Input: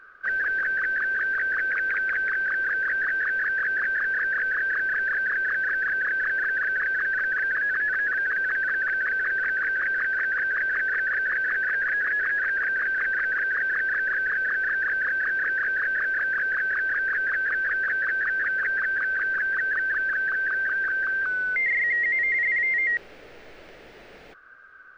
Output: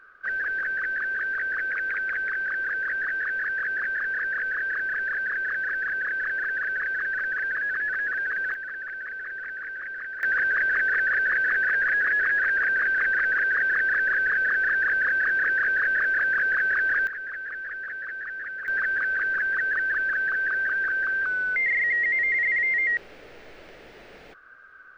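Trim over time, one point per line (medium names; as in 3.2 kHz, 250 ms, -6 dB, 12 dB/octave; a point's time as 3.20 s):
-2.5 dB
from 8.54 s -9.5 dB
from 10.23 s +2 dB
from 17.07 s -9 dB
from 18.68 s 0 dB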